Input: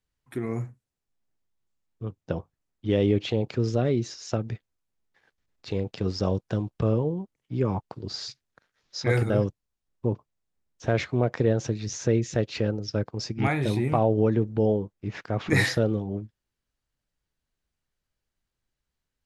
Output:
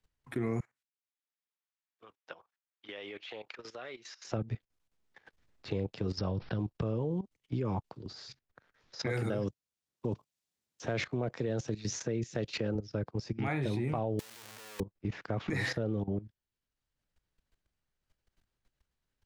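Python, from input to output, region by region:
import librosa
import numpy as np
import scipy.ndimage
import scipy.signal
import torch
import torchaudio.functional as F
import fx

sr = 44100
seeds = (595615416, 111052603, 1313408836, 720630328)

y = fx.chain(x, sr, fx.highpass(hz=1400.0, slope=12),
    fx.high_shelf(hz=4900.0, db=-9.0), at=(0.6, 4.25))
y = fx.chain(y, sr, fx.peak_eq(hz=420.0, db=-6.5, octaves=2.1),
    fx.resample_bad(factor=4, down='none', up='filtered'),
    fx.env_flatten(amount_pct=70), at=(6.18, 6.59))
y = fx.chain(y, sr, fx.highpass(hz=110.0, slope=12),
    fx.high_shelf(hz=3500.0, db=8.5), at=(9.0, 12.75))
y = fx.chain(y, sr, fx.clip_1bit(),
    fx.highpass(hz=94.0, slope=12),
    fx.pre_emphasis(coefficient=0.97), at=(14.19, 14.8))
y = fx.level_steps(y, sr, step_db=16)
y = fx.high_shelf(y, sr, hz=8100.0, db=-9.5)
y = fx.band_squash(y, sr, depth_pct=40)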